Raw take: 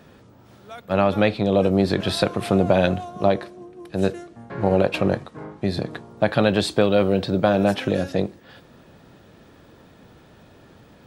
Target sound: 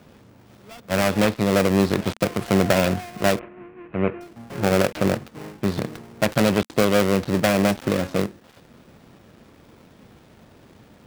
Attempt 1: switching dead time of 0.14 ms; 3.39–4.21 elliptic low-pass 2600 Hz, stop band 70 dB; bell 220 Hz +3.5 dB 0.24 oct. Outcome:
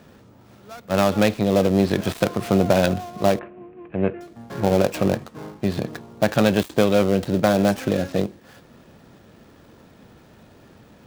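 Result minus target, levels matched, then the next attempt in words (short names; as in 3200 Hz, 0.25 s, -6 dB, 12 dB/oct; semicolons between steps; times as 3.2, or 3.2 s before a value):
switching dead time: distortion -9 dB
switching dead time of 0.35 ms; 3.39–4.21 elliptic low-pass 2600 Hz, stop band 70 dB; bell 220 Hz +3.5 dB 0.24 oct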